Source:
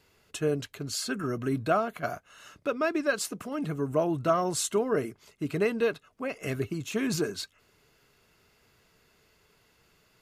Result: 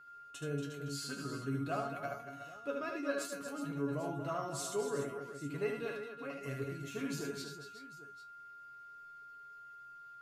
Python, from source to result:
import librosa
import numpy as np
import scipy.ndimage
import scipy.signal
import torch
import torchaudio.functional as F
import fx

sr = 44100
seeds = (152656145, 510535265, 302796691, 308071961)

y = fx.comb_fb(x, sr, f0_hz=140.0, decay_s=0.19, harmonics='all', damping=0.0, mix_pct=90)
y = y + 10.0 ** (-50.0 / 20.0) * np.sin(2.0 * np.pi * 1400.0 * np.arange(len(y)) / sr)
y = fx.echo_multitap(y, sr, ms=(75, 234, 368, 795), db=(-4.5, -9.0, -11.0, -16.5))
y = F.gain(torch.from_numpy(y), -4.0).numpy()